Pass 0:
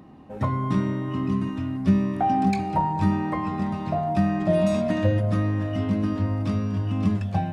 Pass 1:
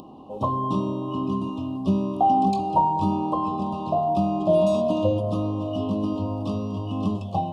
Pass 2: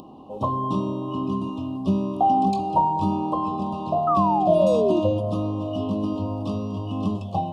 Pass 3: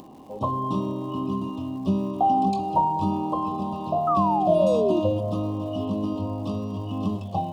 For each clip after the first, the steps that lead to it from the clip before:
tone controls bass -11 dB, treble -8 dB; upward compressor, threshold -43 dBFS; elliptic band-stop 1.1–2.9 kHz, stop band 40 dB; trim +5 dB
painted sound fall, 4.07–5.00 s, 330–1300 Hz -22 dBFS
crackle 340 per s -46 dBFS; trim -1.5 dB

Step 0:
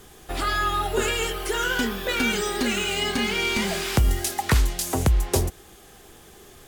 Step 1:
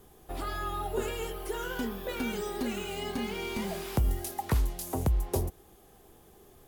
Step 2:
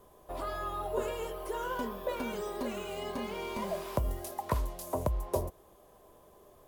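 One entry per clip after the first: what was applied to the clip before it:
high-order bell 3.4 kHz -8 dB 3 oct; trim -7 dB
small resonant body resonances 600/1000 Hz, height 16 dB, ringing for 30 ms; trim -6 dB

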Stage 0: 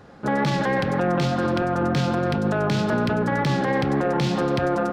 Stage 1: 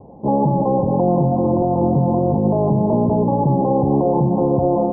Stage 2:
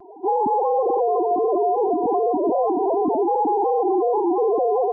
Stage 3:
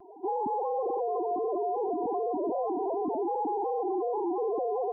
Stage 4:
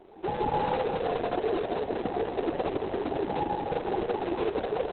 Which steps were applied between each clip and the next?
steep low-pass 1 kHz 96 dB/octave; trim +6 dB
formants replaced by sine waves; peak limiter -14.5 dBFS, peak gain reduction 9.5 dB; vibrato 0.51 Hz 16 cents; trim +1 dB
peak limiter -17 dBFS, peak gain reduction 3.5 dB; trim -7 dB
in parallel at -6 dB: sample-rate reducer 1 kHz, jitter 20%; on the sum: feedback delay 165 ms, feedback 39%, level -4 dB; Opus 6 kbps 48 kHz

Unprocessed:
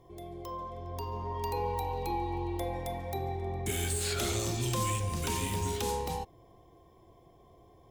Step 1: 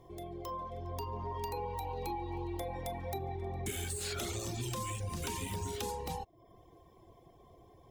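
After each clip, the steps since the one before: compression, threshold -34 dBFS, peak gain reduction 7.5 dB; reverb removal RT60 0.61 s; trim +1 dB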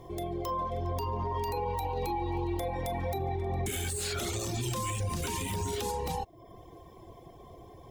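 peak limiter -33.5 dBFS, peak gain reduction 8.5 dB; trim +9 dB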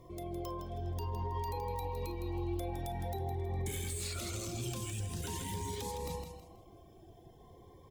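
feedback delay 161 ms, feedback 31%, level -7.5 dB; Shepard-style phaser rising 0.48 Hz; trim -6 dB

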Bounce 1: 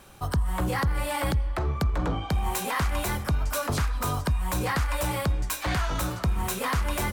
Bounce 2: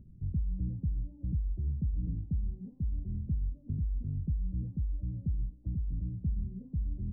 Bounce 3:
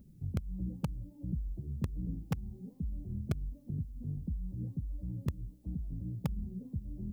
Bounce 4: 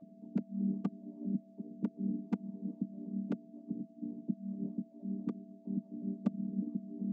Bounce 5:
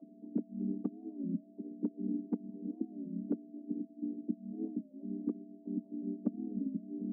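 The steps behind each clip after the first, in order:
compression, threshold -26 dBFS, peak gain reduction 6 dB; inverse Chebyshev low-pass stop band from 1.3 kHz, stop band 80 dB; upward compressor, threshold -45 dBFS; trim -1.5 dB
flange 1.4 Hz, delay 3.7 ms, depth 6 ms, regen -30%; tilt EQ +3 dB/octave; in parallel at -6.5 dB: bit crusher 6-bit; on the sum: trim +10.5 dB
vocoder on a held chord minor triad, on G3; whistle 660 Hz -65 dBFS; trim +3 dB
ladder band-pass 360 Hz, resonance 50%; warped record 33 1/3 rpm, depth 160 cents; trim +11.5 dB

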